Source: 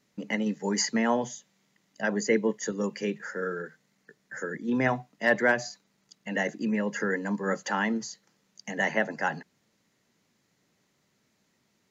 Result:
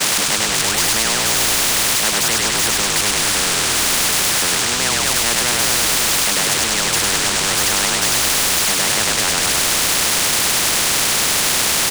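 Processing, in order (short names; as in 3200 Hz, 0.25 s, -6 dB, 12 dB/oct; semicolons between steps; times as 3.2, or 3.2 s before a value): switching spikes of -20 dBFS; expander -31 dBFS; air absorption 130 m; on a send: frequency-shifting echo 0.101 s, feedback 53%, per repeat -48 Hz, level -3 dB; on the sum: spectral compressor 10:1; gain +8.5 dB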